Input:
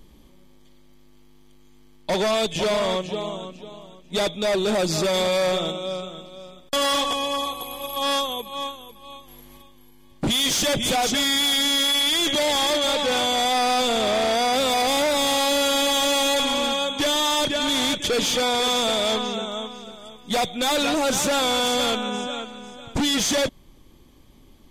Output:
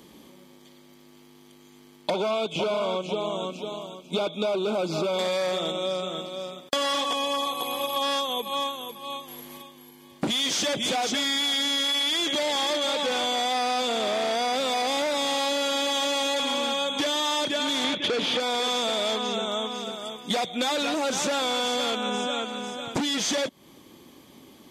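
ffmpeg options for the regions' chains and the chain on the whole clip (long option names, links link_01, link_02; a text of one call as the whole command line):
ffmpeg -i in.wav -filter_complex "[0:a]asettb=1/sr,asplit=3[link_01][link_02][link_03];[link_01]atrim=end=2.104[link_04];[link_02]atrim=start=2.1:end=5.19,asetpts=PTS-STARTPTS,afade=type=in:duration=0.004:curve=qsin,afade=type=out:start_time=3.086:duration=0.004:curve=qsin,acrossover=split=3500[link_05][link_06];[link_06]acompressor=threshold=-45dB:ratio=4:attack=1:release=60[link_07];[link_05][link_07]amix=inputs=2:normalize=0,asuperstop=centerf=1800:order=20:qfactor=3[link_08];[link_03]atrim=start=5.186[link_09];[link_04][link_08]acrossfade=duration=0.004:curve1=hsin:curve2=qsin[link_10];[link_10][link_09]acrossfade=duration=0.004:curve1=qsin:curve2=hsin,asettb=1/sr,asplit=3[link_11][link_12][link_13];[link_11]atrim=end=17.844[link_14];[link_12]atrim=start=17.84:end=18.4,asetpts=PTS-STARTPTS,afade=type=in:duration=0.004:curve=qsin,afade=type=out:start_time=0.556:duration=0.004:curve=qsin,lowpass=frequency=3900:width=0.5412,lowpass=frequency=3900:width=1.3066,aeval=exprs='0.15*sin(PI/2*1.41*val(0)/0.15)':channel_layout=same[link_15];[link_13]atrim=start=18.396[link_16];[link_14][link_15]acrossfade=duration=0.004:curve1=hsin:curve2=qsin[link_17];[link_17][link_16]acrossfade=duration=0.004:curve1=qsin:curve2=hsin,acrossover=split=7800[link_18][link_19];[link_19]acompressor=threshold=-44dB:ratio=4:attack=1:release=60[link_20];[link_18][link_20]amix=inputs=2:normalize=0,highpass=200,acompressor=threshold=-31dB:ratio=6,volume=6.5dB" out.wav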